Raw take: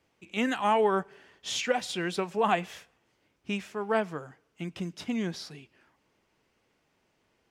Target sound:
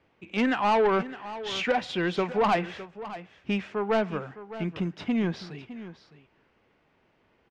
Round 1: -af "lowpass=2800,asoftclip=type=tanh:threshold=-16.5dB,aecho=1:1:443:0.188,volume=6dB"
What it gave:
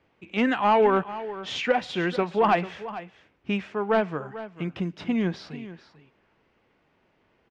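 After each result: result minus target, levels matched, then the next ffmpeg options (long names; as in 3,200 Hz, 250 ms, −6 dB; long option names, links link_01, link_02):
soft clipping: distortion −9 dB; echo 167 ms early
-af "lowpass=2800,asoftclip=type=tanh:threshold=-23.5dB,aecho=1:1:443:0.188,volume=6dB"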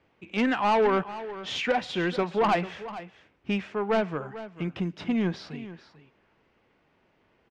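echo 167 ms early
-af "lowpass=2800,asoftclip=type=tanh:threshold=-23.5dB,aecho=1:1:610:0.188,volume=6dB"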